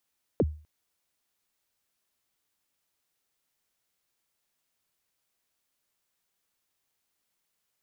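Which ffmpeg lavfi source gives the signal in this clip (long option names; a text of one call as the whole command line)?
ffmpeg -f lavfi -i "aevalsrc='0.141*pow(10,-3*t/0.38)*sin(2*PI*(580*0.042/log(76/580)*(exp(log(76/580)*min(t,0.042)/0.042)-1)+76*max(t-0.042,0)))':duration=0.25:sample_rate=44100" out.wav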